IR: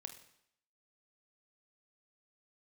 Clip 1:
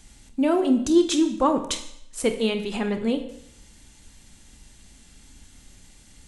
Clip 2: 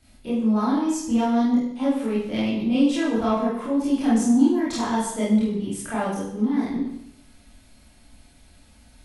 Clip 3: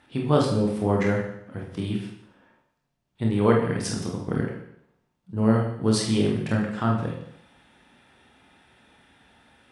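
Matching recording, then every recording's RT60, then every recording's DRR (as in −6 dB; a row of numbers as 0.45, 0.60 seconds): 1; 0.70, 0.70, 0.70 seconds; 6.5, −9.0, −1.0 decibels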